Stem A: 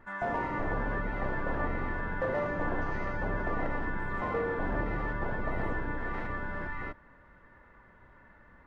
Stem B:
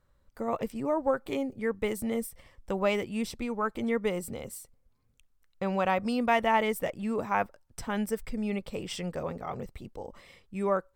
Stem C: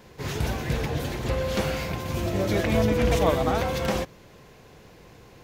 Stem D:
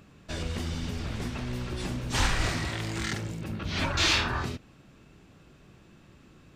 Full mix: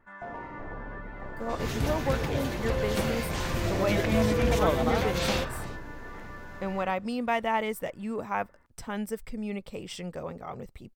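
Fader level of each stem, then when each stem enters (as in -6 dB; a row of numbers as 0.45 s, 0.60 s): -7.5 dB, -2.5 dB, -3.0 dB, -9.0 dB; 0.00 s, 1.00 s, 1.40 s, 1.20 s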